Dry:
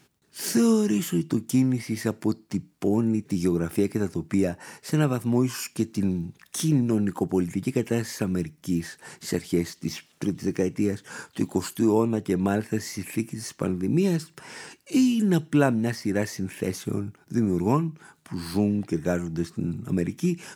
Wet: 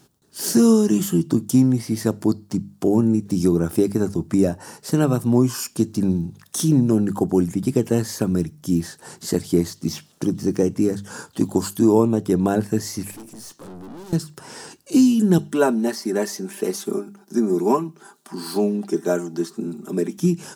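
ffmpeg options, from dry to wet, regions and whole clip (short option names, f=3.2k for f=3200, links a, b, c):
-filter_complex "[0:a]asettb=1/sr,asplit=3[a][b][c];[a]atrim=end=13.114[d];[b]atrim=start=13.11:end=14.13,asetpts=PTS-STARTPTS,afade=t=in:d=0.004:c=qsin,afade=t=out:st=1.016:d=0.004:c=qsin,highpass=210,aeval=exprs='(tanh(126*val(0)+0.4)-tanh(0.4))/126':c=same[e];[c]atrim=start=14.126[f];[d][e]acrossfade=d=0.004:c1=hsin:c2=qsin[g];[g][f]acrossfade=d=0.004:c1=qsin:c2=hsin,asettb=1/sr,asplit=3[h][i][j];[h]atrim=end=15.384[k];[i]atrim=start=15.38:end=20.18,asetpts=PTS-STARTPTS,afade=t=in:d=0.004:c=qsin,afade=t=out:st=4.796:d=0.004:c=qsin,highpass=f=250:w=0.5412,highpass=f=250:w=1.3066,bandreject=f=540:w=9.2,aecho=1:1:5.1:0.6,atrim=end_sample=211680[l];[j]atrim=start=20.176[m];[k][l]acrossfade=d=0.004:c1=hsin:c2=qsin[n];[n][m]acrossfade=d=0.004:c1=qsin:c2=hsin,equalizer=f=2.2k:w=1.5:g=-11.5,bandreject=f=50:t=h:w=6,bandreject=f=100:t=h:w=6,bandreject=f=150:t=h:w=6,bandreject=f=200:t=h:w=6,volume=6dB"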